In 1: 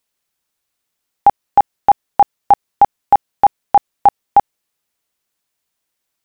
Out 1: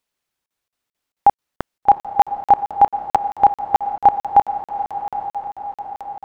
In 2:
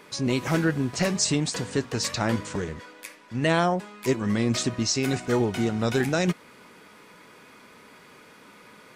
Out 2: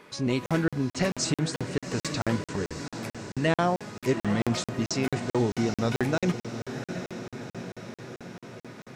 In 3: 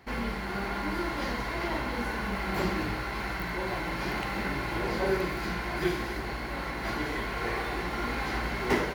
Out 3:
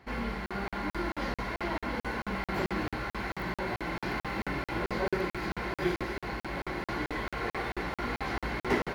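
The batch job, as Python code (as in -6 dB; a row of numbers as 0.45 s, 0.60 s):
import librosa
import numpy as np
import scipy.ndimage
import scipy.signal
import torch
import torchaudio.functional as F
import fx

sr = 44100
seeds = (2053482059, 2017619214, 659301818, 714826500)

y = fx.high_shelf(x, sr, hz=5400.0, db=-7.0)
y = fx.echo_diffused(y, sr, ms=797, feedback_pct=62, wet_db=-10.0)
y = fx.buffer_crackle(y, sr, first_s=0.46, period_s=0.22, block=2048, kind='zero')
y = y * librosa.db_to_amplitude(-1.5)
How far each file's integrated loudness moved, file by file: -3.0 LU, -3.5 LU, -2.5 LU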